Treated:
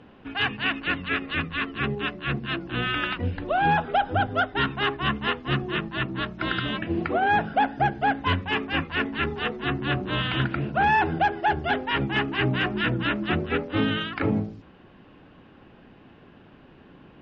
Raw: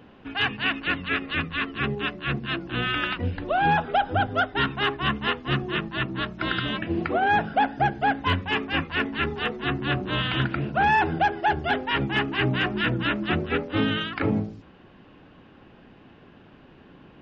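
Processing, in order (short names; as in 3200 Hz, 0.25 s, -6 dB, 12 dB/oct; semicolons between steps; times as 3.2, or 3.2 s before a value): air absorption 57 m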